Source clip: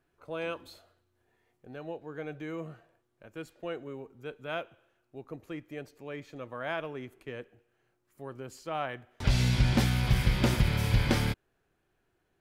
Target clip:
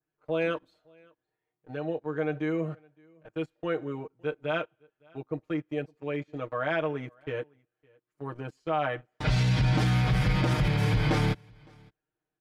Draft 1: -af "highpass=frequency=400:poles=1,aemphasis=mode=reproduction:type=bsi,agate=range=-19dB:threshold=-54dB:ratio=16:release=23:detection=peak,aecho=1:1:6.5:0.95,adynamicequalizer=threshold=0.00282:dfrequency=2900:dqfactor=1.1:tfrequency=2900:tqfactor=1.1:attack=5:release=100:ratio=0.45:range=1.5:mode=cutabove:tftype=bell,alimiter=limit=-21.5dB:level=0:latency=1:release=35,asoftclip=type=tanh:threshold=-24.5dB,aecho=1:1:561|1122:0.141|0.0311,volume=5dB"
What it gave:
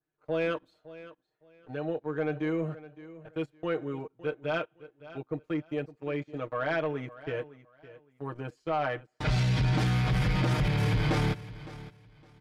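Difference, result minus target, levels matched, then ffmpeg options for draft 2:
soft clipping: distortion +20 dB; echo-to-direct +12 dB
-af "highpass=frequency=400:poles=1,aemphasis=mode=reproduction:type=bsi,agate=range=-19dB:threshold=-54dB:ratio=16:release=23:detection=peak,aecho=1:1:6.5:0.95,adynamicequalizer=threshold=0.00282:dfrequency=2900:dqfactor=1.1:tfrequency=2900:tqfactor=1.1:attack=5:release=100:ratio=0.45:range=1.5:mode=cutabove:tftype=bell,alimiter=limit=-21.5dB:level=0:latency=1:release=35,asoftclip=type=tanh:threshold=-13dB,aecho=1:1:561:0.0355,volume=5dB"

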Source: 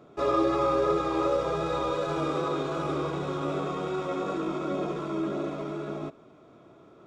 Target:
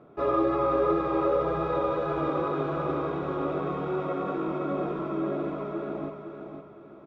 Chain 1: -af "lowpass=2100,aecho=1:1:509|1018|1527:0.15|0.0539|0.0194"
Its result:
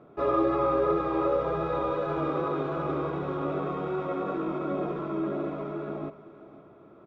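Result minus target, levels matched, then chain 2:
echo-to-direct −9.5 dB
-af "lowpass=2100,aecho=1:1:509|1018|1527|2036:0.447|0.161|0.0579|0.0208"

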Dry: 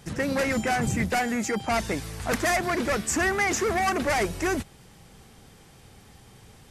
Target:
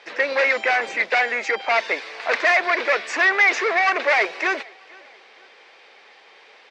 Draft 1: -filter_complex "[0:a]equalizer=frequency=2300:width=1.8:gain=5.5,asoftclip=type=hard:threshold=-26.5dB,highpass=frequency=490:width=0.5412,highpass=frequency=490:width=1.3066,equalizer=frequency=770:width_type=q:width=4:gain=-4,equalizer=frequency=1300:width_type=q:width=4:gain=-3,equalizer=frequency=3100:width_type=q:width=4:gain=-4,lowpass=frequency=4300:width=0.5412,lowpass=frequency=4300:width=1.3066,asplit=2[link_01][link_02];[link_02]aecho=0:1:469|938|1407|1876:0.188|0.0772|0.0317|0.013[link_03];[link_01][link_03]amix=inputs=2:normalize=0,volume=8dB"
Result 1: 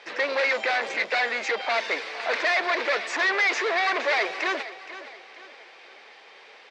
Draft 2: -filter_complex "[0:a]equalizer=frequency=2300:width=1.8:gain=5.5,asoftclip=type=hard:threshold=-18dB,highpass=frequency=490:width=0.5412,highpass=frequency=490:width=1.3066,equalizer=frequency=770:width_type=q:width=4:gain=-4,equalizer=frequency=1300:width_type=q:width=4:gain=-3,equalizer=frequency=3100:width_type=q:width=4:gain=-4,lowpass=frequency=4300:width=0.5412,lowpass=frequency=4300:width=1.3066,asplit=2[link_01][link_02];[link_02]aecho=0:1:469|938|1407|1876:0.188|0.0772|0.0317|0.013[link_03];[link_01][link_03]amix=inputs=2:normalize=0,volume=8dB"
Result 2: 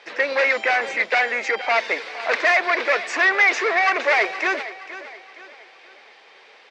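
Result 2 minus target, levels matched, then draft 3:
echo-to-direct +11 dB
-filter_complex "[0:a]equalizer=frequency=2300:width=1.8:gain=5.5,asoftclip=type=hard:threshold=-18dB,highpass=frequency=490:width=0.5412,highpass=frequency=490:width=1.3066,equalizer=frequency=770:width_type=q:width=4:gain=-4,equalizer=frequency=1300:width_type=q:width=4:gain=-3,equalizer=frequency=3100:width_type=q:width=4:gain=-4,lowpass=frequency=4300:width=0.5412,lowpass=frequency=4300:width=1.3066,asplit=2[link_01][link_02];[link_02]aecho=0:1:469|938:0.0531|0.0218[link_03];[link_01][link_03]amix=inputs=2:normalize=0,volume=8dB"

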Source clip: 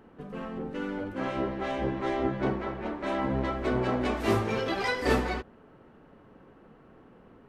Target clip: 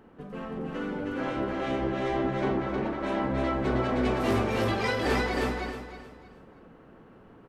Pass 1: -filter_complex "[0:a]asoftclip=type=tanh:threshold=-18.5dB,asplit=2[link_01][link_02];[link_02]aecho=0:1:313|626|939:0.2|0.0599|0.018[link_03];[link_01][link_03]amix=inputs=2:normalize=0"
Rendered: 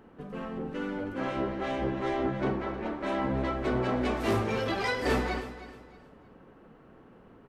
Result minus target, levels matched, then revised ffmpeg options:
echo-to-direct −12 dB
-filter_complex "[0:a]asoftclip=type=tanh:threshold=-18.5dB,asplit=2[link_01][link_02];[link_02]aecho=0:1:313|626|939|1252:0.794|0.238|0.0715|0.0214[link_03];[link_01][link_03]amix=inputs=2:normalize=0"

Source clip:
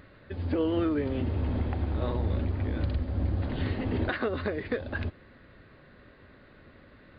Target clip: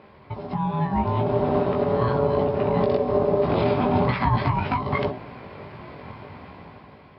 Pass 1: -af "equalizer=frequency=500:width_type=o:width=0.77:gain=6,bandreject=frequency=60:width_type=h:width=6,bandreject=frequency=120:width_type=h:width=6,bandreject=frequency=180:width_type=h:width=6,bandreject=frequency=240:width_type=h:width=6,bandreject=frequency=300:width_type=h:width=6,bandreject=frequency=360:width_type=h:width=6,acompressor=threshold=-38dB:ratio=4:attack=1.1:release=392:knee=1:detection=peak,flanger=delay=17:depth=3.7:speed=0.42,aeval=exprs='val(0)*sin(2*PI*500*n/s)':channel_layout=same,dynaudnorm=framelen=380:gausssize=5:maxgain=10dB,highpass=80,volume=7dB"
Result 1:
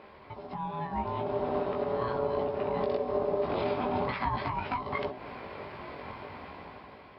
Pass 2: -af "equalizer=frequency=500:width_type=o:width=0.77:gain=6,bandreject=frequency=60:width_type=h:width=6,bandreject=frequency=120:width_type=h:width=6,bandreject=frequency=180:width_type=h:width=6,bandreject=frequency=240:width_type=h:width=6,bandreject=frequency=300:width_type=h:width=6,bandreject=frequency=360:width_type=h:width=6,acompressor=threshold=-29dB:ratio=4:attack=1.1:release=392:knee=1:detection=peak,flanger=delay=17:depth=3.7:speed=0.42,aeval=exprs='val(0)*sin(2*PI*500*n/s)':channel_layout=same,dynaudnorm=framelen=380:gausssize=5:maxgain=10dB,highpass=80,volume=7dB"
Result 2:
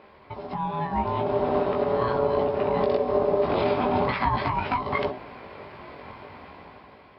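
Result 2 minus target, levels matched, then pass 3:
125 Hz band −6.5 dB
-af "equalizer=frequency=500:width_type=o:width=0.77:gain=6,bandreject=frequency=60:width_type=h:width=6,bandreject=frequency=120:width_type=h:width=6,bandreject=frequency=180:width_type=h:width=6,bandreject=frequency=240:width_type=h:width=6,bandreject=frequency=300:width_type=h:width=6,bandreject=frequency=360:width_type=h:width=6,acompressor=threshold=-29dB:ratio=4:attack=1.1:release=392:knee=1:detection=peak,flanger=delay=17:depth=3.7:speed=0.42,aeval=exprs='val(0)*sin(2*PI*500*n/s)':channel_layout=same,dynaudnorm=framelen=380:gausssize=5:maxgain=10dB,highpass=80,equalizer=frequency=130:width_type=o:width=1.7:gain=10,volume=7dB"

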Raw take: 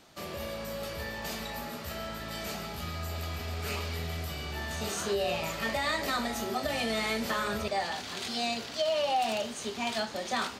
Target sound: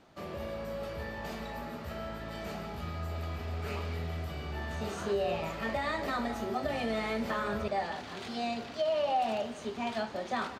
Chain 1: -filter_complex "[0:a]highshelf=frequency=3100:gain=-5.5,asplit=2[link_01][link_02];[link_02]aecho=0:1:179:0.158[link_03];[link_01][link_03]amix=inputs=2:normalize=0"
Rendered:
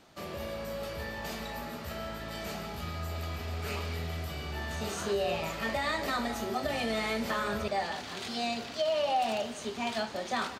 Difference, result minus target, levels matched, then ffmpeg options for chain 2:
8,000 Hz band +7.0 dB
-filter_complex "[0:a]highshelf=frequency=3100:gain=-15.5,asplit=2[link_01][link_02];[link_02]aecho=0:1:179:0.158[link_03];[link_01][link_03]amix=inputs=2:normalize=0"

